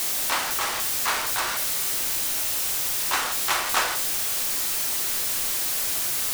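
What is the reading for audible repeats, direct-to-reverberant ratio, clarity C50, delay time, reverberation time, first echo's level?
none, 5.5 dB, 12.0 dB, none, 0.50 s, none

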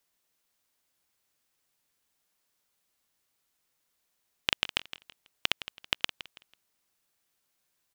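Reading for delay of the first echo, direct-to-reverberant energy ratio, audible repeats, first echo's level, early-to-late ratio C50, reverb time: 0.164 s, none, 3, -14.0 dB, none, none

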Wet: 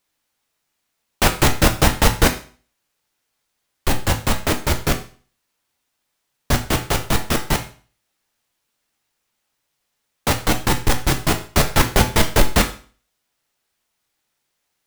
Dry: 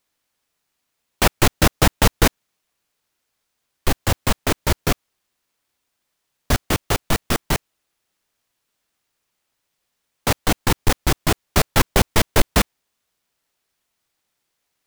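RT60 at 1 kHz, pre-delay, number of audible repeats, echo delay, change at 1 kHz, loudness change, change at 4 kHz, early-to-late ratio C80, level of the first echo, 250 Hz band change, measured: 0.40 s, 8 ms, none, none, +1.5 dB, +1.0 dB, +1.0 dB, 16.0 dB, none, +1.0 dB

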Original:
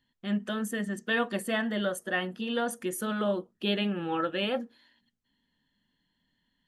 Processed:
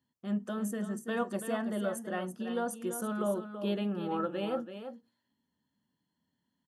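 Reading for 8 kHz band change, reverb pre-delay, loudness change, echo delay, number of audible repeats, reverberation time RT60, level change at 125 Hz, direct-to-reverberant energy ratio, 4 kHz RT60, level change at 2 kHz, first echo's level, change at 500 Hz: -2.5 dB, none, -4.0 dB, 0.333 s, 1, none, -2.5 dB, none, none, -11.0 dB, -9.5 dB, -2.5 dB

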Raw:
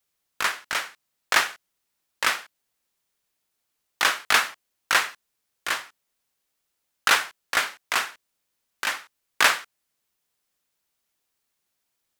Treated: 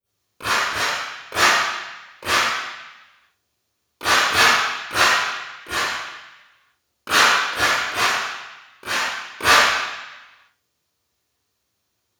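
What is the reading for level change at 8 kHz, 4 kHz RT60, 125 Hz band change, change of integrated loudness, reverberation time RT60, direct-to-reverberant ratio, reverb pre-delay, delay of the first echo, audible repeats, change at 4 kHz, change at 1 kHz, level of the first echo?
+5.5 dB, 1.1 s, n/a, +6.0 dB, 1.0 s, -16.5 dB, 26 ms, none, none, +7.0 dB, +8.0 dB, none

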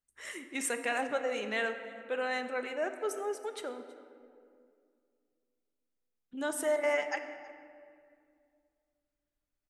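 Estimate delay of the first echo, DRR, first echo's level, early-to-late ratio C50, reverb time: 0.322 s, 7.0 dB, -21.5 dB, 8.5 dB, 2.2 s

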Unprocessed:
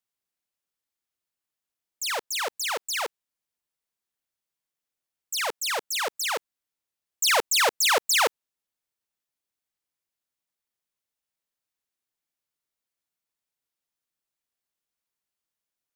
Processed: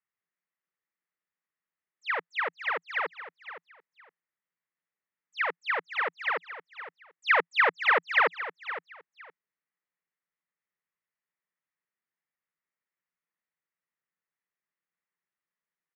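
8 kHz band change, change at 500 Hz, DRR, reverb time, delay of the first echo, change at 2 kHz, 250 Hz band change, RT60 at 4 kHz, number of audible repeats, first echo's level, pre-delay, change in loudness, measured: under -35 dB, -3.5 dB, none, none, 0.514 s, +2.0 dB, -3.5 dB, none, 2, -13.0 dB, none, -3.0 dB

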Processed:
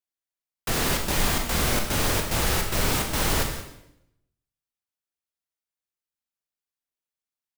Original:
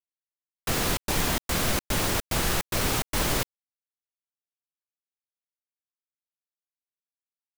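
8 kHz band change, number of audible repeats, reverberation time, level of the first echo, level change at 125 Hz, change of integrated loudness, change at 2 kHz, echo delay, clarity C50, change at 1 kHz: +2.0 dB, 1, 0.80 s, -14.0 dB, +2.5 dB, +2.0 dB, +2.0 dB, 0.175 s, 5.5 dB, +2.0 dB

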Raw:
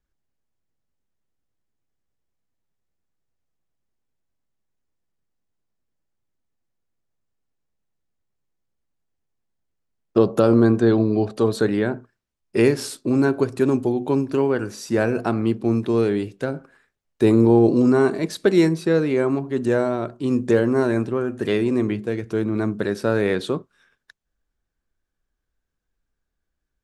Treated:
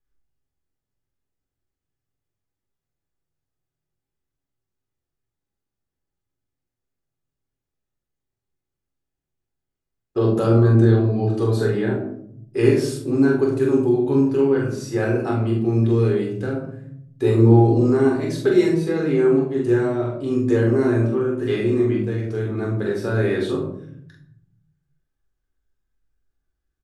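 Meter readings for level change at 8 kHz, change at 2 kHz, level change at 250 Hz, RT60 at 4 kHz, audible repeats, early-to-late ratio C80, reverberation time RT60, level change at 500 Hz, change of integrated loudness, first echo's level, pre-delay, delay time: -3.0 dB, -1.5 dB, 0.0 dB, 0.35 s, 1, 8.0 dB, 0.65 s, +0.5 dB, +1.0 dB, -3.5 dB, 7 ms, 44 ms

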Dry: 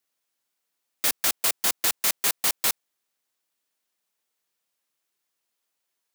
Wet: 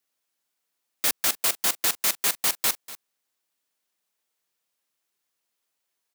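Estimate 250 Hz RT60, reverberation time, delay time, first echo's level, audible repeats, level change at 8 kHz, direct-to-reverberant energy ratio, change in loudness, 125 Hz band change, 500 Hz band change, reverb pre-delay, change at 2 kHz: none, none, 0.242 s, -17.0 dB, 1, 0.0 dB, none, 0.0 dB, 0.0 dB, 0.0 dB, none, 0.0 dB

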